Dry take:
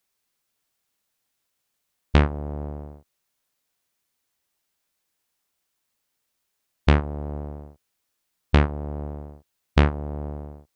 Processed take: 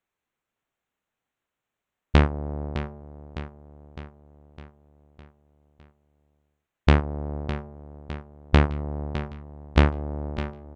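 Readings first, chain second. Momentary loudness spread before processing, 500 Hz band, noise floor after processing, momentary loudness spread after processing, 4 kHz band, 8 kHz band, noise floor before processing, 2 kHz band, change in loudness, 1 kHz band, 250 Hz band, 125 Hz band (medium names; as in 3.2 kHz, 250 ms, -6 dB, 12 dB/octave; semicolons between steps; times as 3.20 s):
17 LU, +0.5 dB, under -85 dBFS, 21 LU, +0.5 dB, no reading, -78 dBFS, +0.5 dB, -0.5 dB, +0.5 dB, +0.5 dB, 0.0 dB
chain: local Wiener filter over 9 samples; on a send: feedback delay 608 ms, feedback 57%, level -12 dB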